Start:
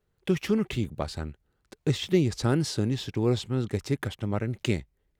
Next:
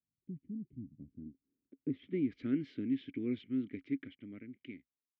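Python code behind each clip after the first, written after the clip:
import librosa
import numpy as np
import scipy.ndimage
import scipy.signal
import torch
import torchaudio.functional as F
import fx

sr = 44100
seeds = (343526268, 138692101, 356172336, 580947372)

y = fx.fade_out_tail(x, sr, length_s=1.7)
y = fx.vowel_filter(y, sr, vowel='i')
y = fx.filter_sweep_lowpass(y, sr, from_hz=140.0, to_hz=2100.0, start_s=0.94, end_s=2.37, q=1.2)
y = y * librosa.db_to_amplitude(1.0)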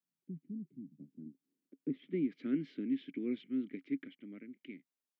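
y = scipy.signal.sosfilt(scipy.signal.cheby1(4, 1.0, 160.0, 'highpass', fs=sr, output='sos'), x)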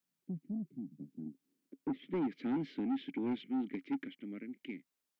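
y = 10.0 ** (-35.0 / 20.0) * np.tanh(x / 10.0 ** (-35.0 / 20.0))
y = y * librosa.db_to_amplitude(5.0)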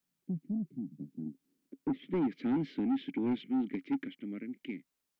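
y = fx.low_shelf(x, sr, hz=180.0, db=6.0)
y = y * librosa.db_to_amplitude(2.0)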